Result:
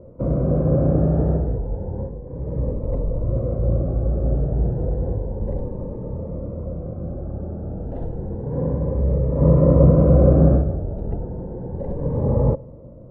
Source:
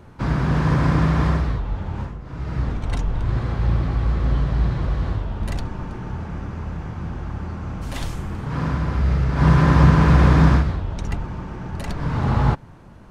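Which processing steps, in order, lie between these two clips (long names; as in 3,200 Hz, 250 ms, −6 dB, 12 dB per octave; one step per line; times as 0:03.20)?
low-pass with resonance 530 Hz, resonance Q 6.6
on a send at −23 dB: convolution reverb RT60 1.9 s, pre-delay 14 ms
on the sum: phaser whose notches keep moving one way rising 0.31 Hz
level −1 dB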